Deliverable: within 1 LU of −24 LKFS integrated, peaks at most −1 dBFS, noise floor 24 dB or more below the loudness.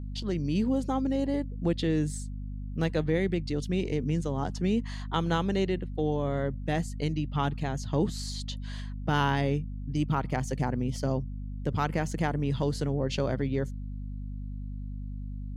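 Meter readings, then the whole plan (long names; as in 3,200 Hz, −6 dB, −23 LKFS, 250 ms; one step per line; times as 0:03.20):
mains hum 50 Hz; hum harmonics up to 250 Hz; level of the hum −34 dBFS; integrated loudness −30.5 LKFS; sample peak −14.0 dBFS; target loudness −24.0 LKFS
→ mains-hum notches 50/100/150/200/250 Hz
level +6.5 dB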